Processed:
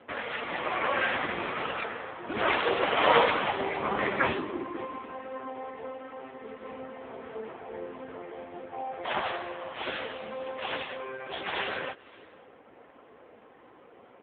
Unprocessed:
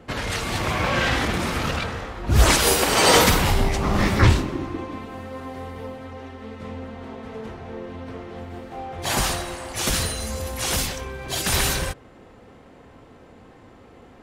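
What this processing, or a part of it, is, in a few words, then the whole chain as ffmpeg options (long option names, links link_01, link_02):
satellite phone: -af "highpass=370,lowpass=3400,lowshelf=frequency=94:gain=2.5,aecho=1:1:532:0.0708" -ar 8000 -c:a libopencore_amrnb -b:a 5900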